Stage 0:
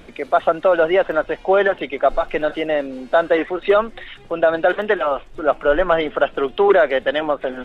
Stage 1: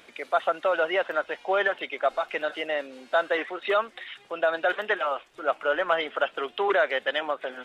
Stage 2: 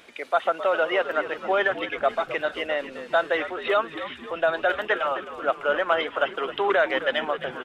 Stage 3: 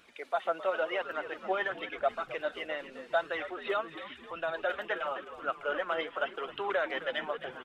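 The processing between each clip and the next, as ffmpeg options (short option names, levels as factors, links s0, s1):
-af "highpass=f=1300:p=1,volume=0.794"
-filter_complex "[0:a]asplit=6[s0][s1][s2][s3][s4][s5];[s1]adelay=262,afreqshift=-81,volume=0.237[s6];[s2]adelay=524,afreqshift=-162,volume=0.126[s7];[s3]adelay=786,afreqshift=-243,volume=0.0668[s8];[s4]adelay=1048,afreqshift=-324,volume=0.0355[s9];[s5]adelay=1310,afreqshift=-405,volume=0.0186[s10];[s0][s6][s7][s8][s9][s10]amix=inputs=6:normalize=0,volume=1.19"
-af "flanger=delay=0.7:depth=5.4:regen=38:speed=0.91:shape=sinusoidal,volume=0.562"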